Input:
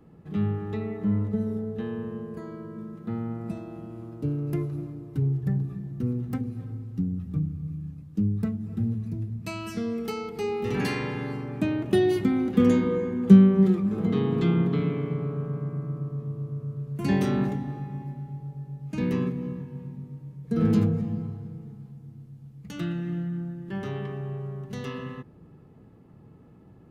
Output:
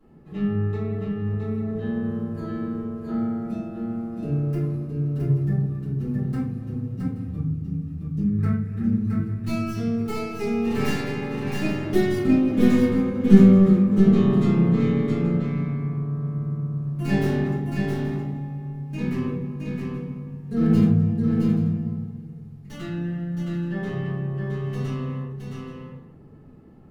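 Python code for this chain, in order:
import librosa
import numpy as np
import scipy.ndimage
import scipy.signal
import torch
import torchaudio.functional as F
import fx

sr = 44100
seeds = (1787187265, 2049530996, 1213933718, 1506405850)

y = fx.tracing_dist(x, sr, depth_ms=0.14)
y = fx.over_compress(y, sr, threshold_db=-33.0, ratio=-1.0, at=(1.01, 2.8))
y = fx.band_shelf(y, sr, hz=1700.0, db=11.5, octaves=1.1, at=(8.23, 8.95))
y = fx.echo_multitap(y, sr, ms=(668, 828), db=(-4.0, -15.0))
y = fx.room_shoebox(y, sr, seeds[0], volume_m3=57.0, walls='mixed', distance_m=2.2)
y = y * 10.0 ** (-9.5 / 20.0)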